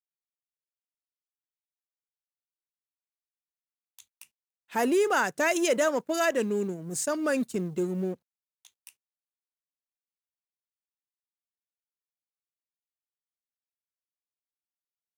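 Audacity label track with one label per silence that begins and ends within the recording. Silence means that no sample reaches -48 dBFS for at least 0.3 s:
4.240000	4.700000	silence
8.150000	8.650000	silence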